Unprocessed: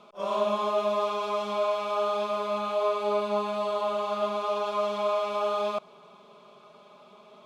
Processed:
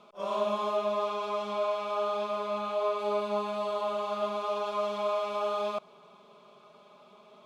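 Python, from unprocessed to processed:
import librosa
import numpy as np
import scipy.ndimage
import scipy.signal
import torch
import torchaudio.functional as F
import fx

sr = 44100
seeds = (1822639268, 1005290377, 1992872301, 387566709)

y = fx.high_shelf(x, sr, hz=6200.0, db=-4.5, at=(0.77, 2.99))
y = y * librosa.db_to_amplitude(-3.0)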